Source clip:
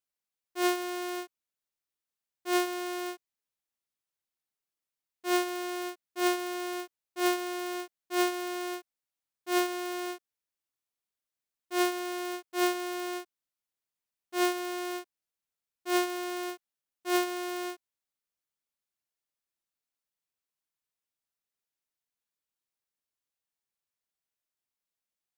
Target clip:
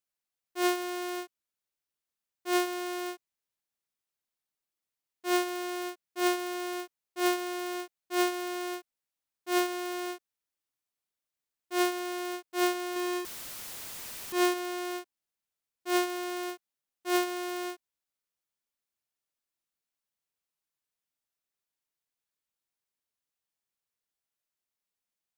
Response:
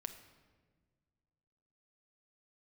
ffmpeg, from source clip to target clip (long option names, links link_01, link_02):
-filter_complex "[0:a]asettb=1/sr,asplit=3[link_01][link_02][link_03];[link_01]atrim=end=12.964[link_04];[link_02]atrim=start=12.96:end=14.54,asetpts=PTS-STARTPTS,afade=type=in:duration=0.004:curve=qsin,afade=type=out:start_time=1.576:duration=0.004:curve=qsin,aeval=exprs='val(0)+0.5*0.0211*sgn(val(0))':channel_layout=same[link_05];[link_03]atrim=start=14.536[link_06];[link_04][link_05]acrossfade=duration=0.004:curve1=hsin:curve2=qsin[link_07];[link_07][link_06]acrossfade=duration=0.004:curve1=qsin:curve2=hsin"